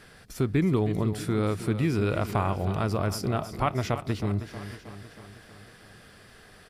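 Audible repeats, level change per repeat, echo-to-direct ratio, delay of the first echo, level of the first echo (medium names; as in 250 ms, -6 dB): 6, -4.5 dB, -10.0 dB, 316 ms, -12.0 dB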